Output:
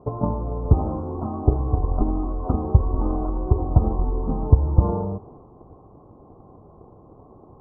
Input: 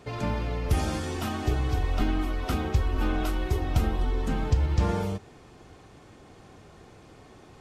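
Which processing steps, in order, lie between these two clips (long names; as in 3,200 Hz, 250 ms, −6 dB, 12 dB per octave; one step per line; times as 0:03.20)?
transient designer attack +9 dB, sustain +5 dB
elliptic low-pass filter 1,100 Hz, stop band 40 dB
level +2.5 dB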